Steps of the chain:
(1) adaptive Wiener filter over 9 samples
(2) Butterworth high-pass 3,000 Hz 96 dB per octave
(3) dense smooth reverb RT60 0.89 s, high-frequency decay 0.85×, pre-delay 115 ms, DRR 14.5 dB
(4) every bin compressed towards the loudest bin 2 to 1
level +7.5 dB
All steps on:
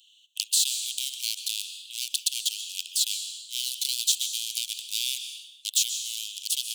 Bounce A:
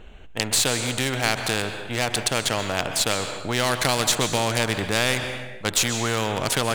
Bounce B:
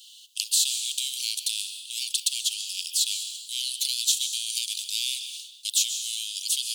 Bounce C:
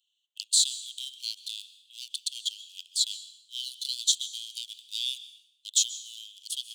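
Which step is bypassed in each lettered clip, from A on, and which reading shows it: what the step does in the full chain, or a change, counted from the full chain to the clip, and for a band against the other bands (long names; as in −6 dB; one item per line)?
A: 2, change in crest factor −3.0 dB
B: 1, change in integrated loudness +1.0 LU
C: 4, change in momentary loudness spread +9 LU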